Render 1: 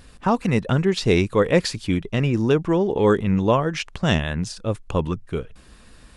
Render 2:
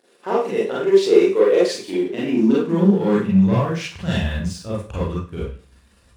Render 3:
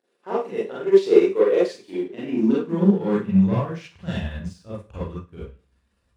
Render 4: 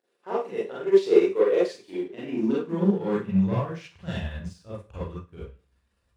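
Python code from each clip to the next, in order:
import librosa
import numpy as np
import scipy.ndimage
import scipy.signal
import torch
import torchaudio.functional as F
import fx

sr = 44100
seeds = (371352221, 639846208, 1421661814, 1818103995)

y1 = fx.leveller(x, sr, passes=2)
y1 = fx.rev_schroeder(y1, sr, rt60_s=0.39, comb_ms=32, drr_db=-7.5)
y1 = fx.filter_sweep_highpass(y1, sr, from_hz=400.0, to_hz=64.0, start_s=1.87, end_s=4.37, q=4.3)
y1 = y1 * librosa.db_to_amplitude(-16.5)
y2 = fx.high_shelf(y1, sr, hz=4100.0, db=-6.5)
y2 = fx.upward_expand(y2, sr, threshold_db=-35.0, expansion=1.5)
y3 = fx.peak_eq(y2, sr, hz=230.0, db=-4.0, octaves=0.8)
y3 = y3 * librosa.db_to_amplitude(-2.5)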